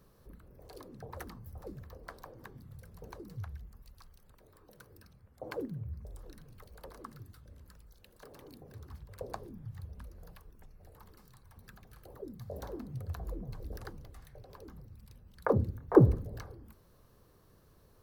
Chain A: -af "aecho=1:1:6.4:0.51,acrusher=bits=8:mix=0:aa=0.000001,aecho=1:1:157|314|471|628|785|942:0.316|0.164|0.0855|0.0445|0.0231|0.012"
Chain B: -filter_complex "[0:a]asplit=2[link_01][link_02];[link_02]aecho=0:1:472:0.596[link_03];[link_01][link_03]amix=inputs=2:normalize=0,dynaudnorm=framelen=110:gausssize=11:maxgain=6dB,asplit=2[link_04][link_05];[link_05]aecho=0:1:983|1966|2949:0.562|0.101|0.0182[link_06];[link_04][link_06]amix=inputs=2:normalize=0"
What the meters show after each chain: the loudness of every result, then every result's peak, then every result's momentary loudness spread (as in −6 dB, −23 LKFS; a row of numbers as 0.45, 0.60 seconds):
−33.5, −30.5 LKFS; −6.5, −2.5 dBFS; 21, 21 LU